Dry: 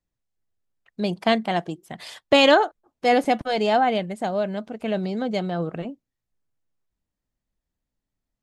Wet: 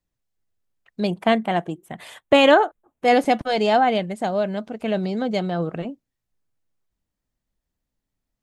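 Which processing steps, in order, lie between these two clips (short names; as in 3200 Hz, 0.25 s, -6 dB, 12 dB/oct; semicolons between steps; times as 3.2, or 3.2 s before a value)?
1.07–3.08 bell 4900 Hz -14 dB 0.71 oct; gain +2 dB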